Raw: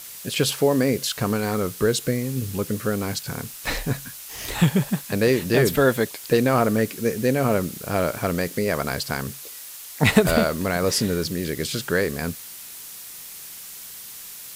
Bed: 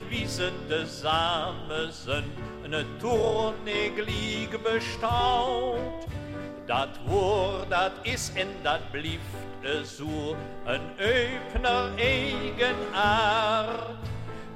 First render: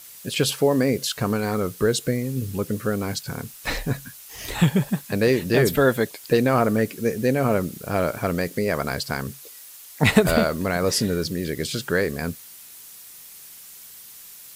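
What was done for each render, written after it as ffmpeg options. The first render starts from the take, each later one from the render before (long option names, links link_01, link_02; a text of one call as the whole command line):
ffmpeg -i in.wav -af "afftdn=noise_reduction=6:noise_floor=-39" out.wav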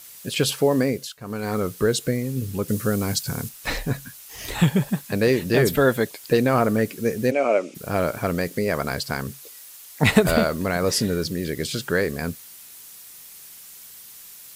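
ffmpeg -i in.wav -filter_complex "[0:a]asettb=1/sr,asplit=3[link_01][link_02][link_03];[link_01]atrim=end=2.684[link_04];[link_02]atrim=start=2.68:end=3.49,asetpts=PTS-STARTPTS,afade=type=in:duration=0.004:curve=qsin,afade=type=out:start_time=0.806:duration=0.004:curve=qsin,bass=frequency=250:gain=4,treble=frequency=4000:gain=7[link_05];[link_03]atrim=start=3.486[link_06];[link_04][link_05]acrossfade=duration=0.004:curve1=hsin:curve2=qsin[link_07];[link_07][link_06]acrossfade=duration=0.004:curve1=qsin:curve2=hsin,asplit=3[link_08][link_09][link_10];[link_08]afade=type=out:start_time=7.3:duration=0.02[link_11];[link_09]highpass=frequency=300:width=0.5412,highpass=frequency=300:width=1.3066,equalizer=frequency=430:width_type=q:width=4:gain=-3,equalizer=frequency=610:width_type=q:width=4:gain=8,equalizer=frequency=1000:width_type=q:width=4:gain=-4,equalizer=frequency=1700:width_type=q:width=4:gain=-7,equalizer=frequency=2400:width_type=q:width=4:gain=10,equalizer=frequency=4200:width_type=q:width=4:gain=-7,lowpass=frequency=7100:width=0.5412,lowpass=frequency=7100:width=1.3066,afade=type=in:start_time=7.3:duration=0.02,afade=type=out:start_time=7.74:duration=0.02[link_12];[link_10]afade=type=in:start_time=7.74:duration=0.02[link_13];[link_11][link_12][link_13]amix=inputs=3:normalize=0,asplit=3[link_14][link_15][link_16];[link_14]atrim=end=1.18,asetpts=PTS-STARTPTS,afade=type=out:start_time=0.81:duration=0.37:silence=0.112202[link_17];[link_15]atrim=start=1.18:end=1.19,asetpts=PTS-STARTPTS,volume=-19dB[link_18];[link_16]atrim=start=1.19,asetpts=PTS-STARTPTS,afade=type=in:duration=0.37:silence=0.112202[link_19];[link_17][link_18][link_19]concat=n=3:v=0:a=1" out.wav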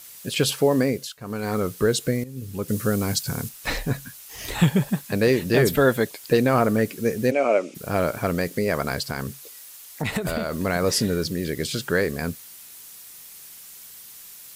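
ffmpeg -i in.wav -filter_complex "[0:a]asettb=1/sr,asplit=3[link_01][link_02][link_03];[link_01]atrim=end=9.054[link_04];[link_02]atrim=start=9.05:end=10.57,asetpts=PTS-STARTPTS,afade=type=in:duration=0.004:curve=qsin,afade=type=out:start_time=1.516:duration=0.004:curve=qsin,acompressor=threshold=-22dB:ratio=6:attack=3.2:release=140:knee=1:detection=peak[link_05];[link_03]atrim=start=10.566[link_06];[link_04][link_05]acrossfade=duration=0.004:curve1=hsin:curve2=qsin[link_07];[link_07][link_06]acrossfade=duration=0.004:curve1=qsin:curve2=hsin,asplit=2[link_08][link_09];[link_08]atrim=end=2.24,asetpts=PTS-STARTPTS,afade=type=out:start_time=2.236:duration=0.004:curve=hsin:silence=0.211349[link_10];[link_09]atrim=start=2.24,asetpts=PTS-STARTPTS,afade=type=in:duration=0.57:silence=0.211349[link_11];[link_10][link_11]concat=n=2:v=0:a=1" out.wav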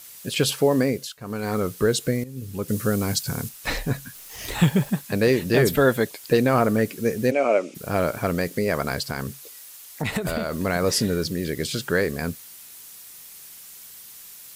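ffmpeg -i in.wav -filter_complex "[0:a]asettb=1/sr,asplit=3[link_01][link_02][link_03];[link_01]atrim=end=4.154[link_04];[link_02]atrim=start=4.15:end=4.9,asetpts=PTS-STARTPTS,afade=type=in:duration=0.004:curve=qsin,afade=type=out:start_time=0.746:duration=0.004:curve=qsin,acrusher=bits=8:dc=4:mix=0:aa=0.000001[link_05];[link_03]atrim=start=4.896[link_06];[link_04][link_05]acrossfade=duration=0.004:curve1=hsin:curve2=qsin[link_07];[link_07][link_06]acrossfade=duration=0.004:curve1=qsin:curve2=hsin" out.wav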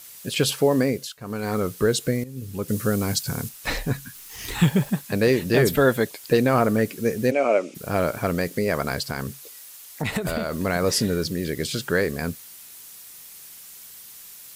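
ffmpeg -i in.wav -filter_complex "[0:a]asettb=1/sr,asplit=3[link_01][link_02][link_03];[link_01]atrim=end=3.924[link_04];[link_02]atrim=start=3.92:end=4.65,asetpts=PTS-STARTPTS,afade=type=in:duration=0.004:curve=qsin,afade=type=out:start_time=0.726:duration=0.004:curve=qsin,equalizer=frequency=600:width_type=o:width=0.43:gain=-13[link_05];[link_03]atrim=start=4.646[link_06];[link_04][link_05]acrossfade=duration=0.004:curve1=hsin:curve2=qsin[link_07];[link_07][link_06]acrossfade=duration=0.004:curve1=qsin:curve2=hsin" out.wav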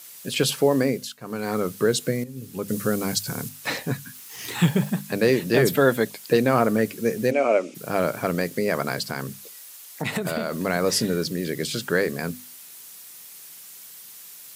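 ffmpeg -i in.wav -af "highpass=frequency=120:width=0.5412,highpass=frequency=120:width=1.3066,bandreject=frequency=50:width_type=h:width=6,bandreject=frequency=100:width_type=h:width=6,bandreject=frequency=150:width_type=h:width=6,bandreject=frequency=200:width_type=h:width=6,bandreject=frequency=250:width_type=h:width=6" out.wav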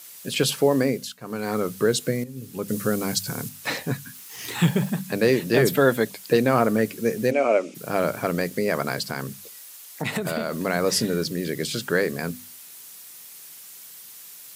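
ffmpeg -i in.wav -af "bandreject=frequency=93.3:width_type=h:width=4,bandreject=frequency=186.6:width_type=h:width=4" out.wav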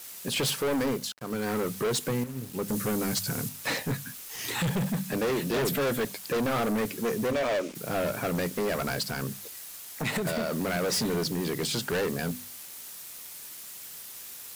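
ffmpeg -i in.wav -af "volume=25dB,asoftclip=hard,volume=-25dB,acrusher=bits=6:mix=0:aa=0.5" out.wav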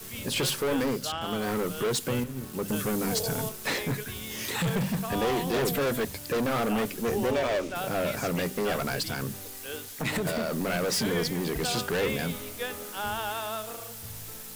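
ffmpeg -i in.wav -i bed.wav -filter_complex "[1:a]volume=-9.5dB[link_01];[0:a][link_01]amix=inputs=2:normalize=0" out.wav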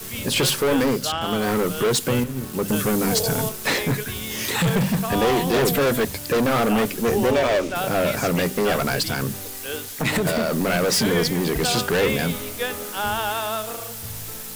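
ffmpeg -i in.wav -af "volume=7.5dB" out.wav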